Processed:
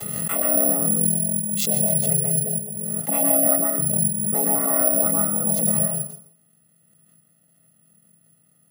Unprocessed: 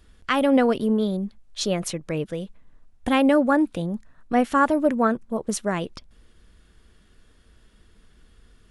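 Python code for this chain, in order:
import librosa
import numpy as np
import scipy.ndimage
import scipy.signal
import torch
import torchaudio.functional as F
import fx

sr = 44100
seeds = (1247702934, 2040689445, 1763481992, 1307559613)

p1 = fx.chord_vocoder(x, sr, chord='minor triad', root=49)
p2 = fx.notch(p1, sr, hz=1500.0, q=12.0)
p3 = p2 + 0.7 * np.pad(p2, (int(1.5 * sr / 1000.0), 0))[:len(p2)]
p4 = fx.rider(p3, sr, range_db=10, speed_s=0.5)
p5 = p3 + (p4 * 10.0 ** (1.5 / 20.0))
p6 = p5 + 10.0 ** (-17.0 / 20.0) * np.pad(p5, (int(147 * sr / 1000.0), 0))[:len(p5)]
p7 = fx.rev_plate(p6, sr, seeds[0], rt60_s=0.54, hf_ratio=0.65, predelay_ms=105, drr_db=-2.0)
p8 = (np.kron(p7[::4], np.eye(4)[0]) * 4)[:len(p7)]
p9 = fx.pre_swell(p8, sr, db_per_s=24.0)
y = p9 * 10.0 ** (-15.5 / 20.0)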